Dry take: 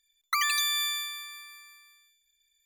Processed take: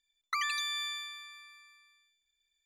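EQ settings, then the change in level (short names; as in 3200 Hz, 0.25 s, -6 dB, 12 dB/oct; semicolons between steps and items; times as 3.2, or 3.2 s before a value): air absorption 50 m; high shelf 6100 Hz -4 dB; -4.5 dB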